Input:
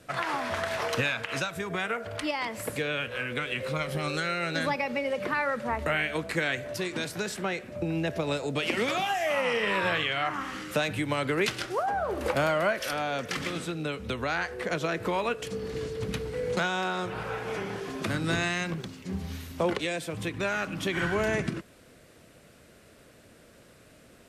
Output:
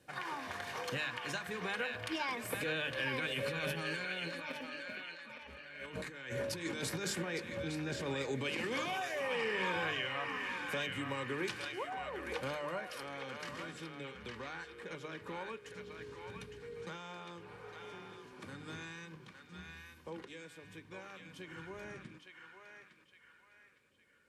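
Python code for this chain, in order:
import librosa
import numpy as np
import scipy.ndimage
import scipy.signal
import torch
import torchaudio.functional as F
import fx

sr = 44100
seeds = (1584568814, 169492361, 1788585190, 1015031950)

p1 = fx.doppler_pass(x, sr, speed_mps=19, closest_m=2.2, pass_at_s=5.29)
p2 = fx.over_compress(p1, sr, threshold_db=-58.0, ratio=-1.0)
p3 = fx.hum_notches(p2, sr, base_hz=50, count=7)
p4 = fx.notch_comb(p3, sr, f0_hz=670.0)
p5 = p4 + fx.echo_banded(p4, sr, ms=860, feedback_pct=44, hz=2100.0, wet_db=-3.0, dry=0)
y = F.gain(torch.from_numpy(p5), 15.5).numpy()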